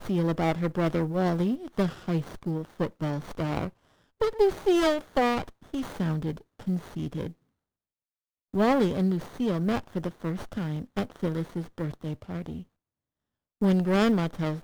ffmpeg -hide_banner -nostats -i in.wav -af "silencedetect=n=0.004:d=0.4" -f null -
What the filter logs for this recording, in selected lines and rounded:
silence_start: 3.71
silence_end: 4.21 | silence_duration: 0.51
silence_start: 7.32
silence_end: 8.54 | silence_duration: 1.21
silence_start: 12.63
silence_end: 13.61 | silence_duration: 0.98